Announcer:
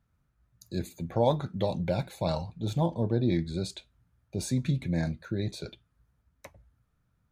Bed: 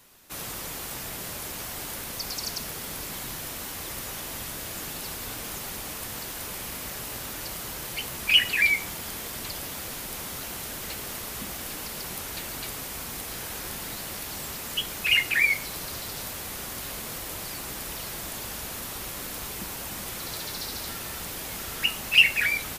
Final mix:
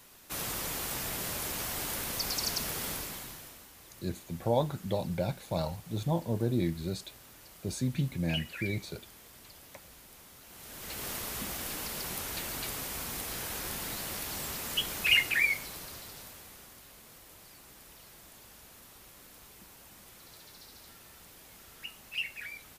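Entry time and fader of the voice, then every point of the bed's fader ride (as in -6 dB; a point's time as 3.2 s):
3.30 s, -3.0 dB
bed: 2.89 s 0 dB
3.69 s -18 dB
10.43 s -18 dB
11.05 s -2 dB
15.1 s -2 dB
16.85 s -18 dB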